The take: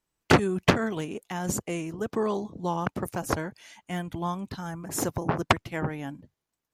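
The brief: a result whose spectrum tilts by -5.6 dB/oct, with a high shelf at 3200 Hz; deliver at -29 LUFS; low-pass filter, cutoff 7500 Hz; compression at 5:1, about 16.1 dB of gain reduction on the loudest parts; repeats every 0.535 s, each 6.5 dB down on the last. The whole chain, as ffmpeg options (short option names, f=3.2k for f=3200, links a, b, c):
-af "lowpass=7.5k,highshelf=f=3.2k:g=-4.5,acompressor=threshold=-33dB:ratio=5,aecho=1:1:535|1070|1605|2140|2675|3210:0.473|0.222|0.105|0.0491|0.0231|0.0109,volume=8dB"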